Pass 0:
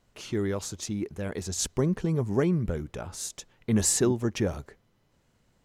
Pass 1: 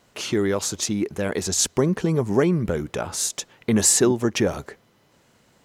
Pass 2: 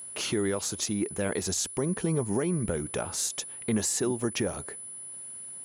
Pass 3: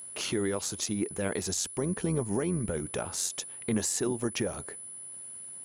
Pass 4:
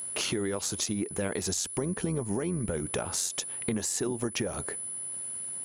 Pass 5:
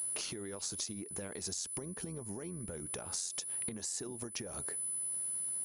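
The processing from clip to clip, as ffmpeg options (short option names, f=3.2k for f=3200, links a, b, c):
-filter_complex "[0:a]highpass=f=240:p=1,asplit=2[a][b];[b]acompressor=threshold=-34dB:ratio=6,volume=2dB[c];[a][c]amix=inputs=2:normalize=0,volume=5dB"
-af "alimiter=limit=-16.5dB:level=0:latency=1:release=464,aeval=exprs='val(0)+0.0141*sin(2*PI*10000*n/s)':c=same,volume=-2dB"
-af "tremolo=f=90:d=0.4"
-af "acompressor=threshold=-34dB:ratio=6,volume=6.5dB"
-af "acompressor=threshold=-34dB:ratio=6,aexciter=amount=2.7:drive=1.5:freq=4.3k,aresample=22050,aresample=44100,volume=-6dB"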